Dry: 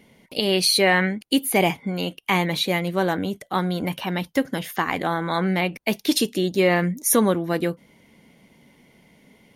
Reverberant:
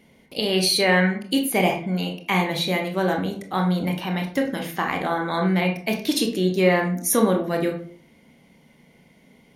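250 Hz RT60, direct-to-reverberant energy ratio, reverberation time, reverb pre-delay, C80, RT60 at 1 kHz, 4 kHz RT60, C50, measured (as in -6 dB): 0.65 s, 2.5 dB, 0.50 s, 22 ms, 13.0 dB, 0.45 s, 0.30 s, 8.5 dB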